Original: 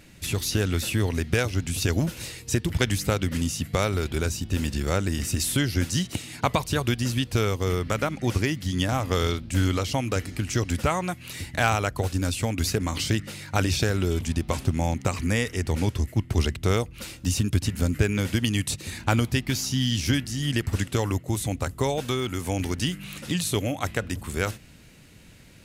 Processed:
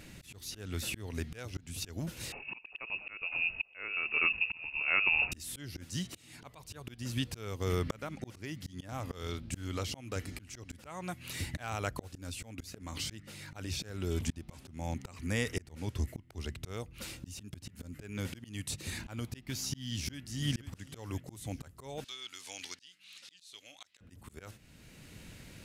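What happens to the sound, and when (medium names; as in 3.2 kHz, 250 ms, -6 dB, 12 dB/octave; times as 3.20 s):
2.32–5.32 s: frequency inversion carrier 2.7 kHz
19.91–20.44 s: echo throw 500 ms, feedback 50%, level -12 dB
22.04–24.01 s: band-pass filter 4.3 kHz, Q 1.6
whole clip: slow attack 767 ms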